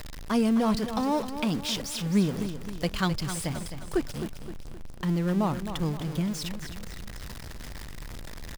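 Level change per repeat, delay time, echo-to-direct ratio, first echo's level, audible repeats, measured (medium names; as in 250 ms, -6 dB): -6.5 dB, 261 ms, -9.0 dB, -10.0 dB, 4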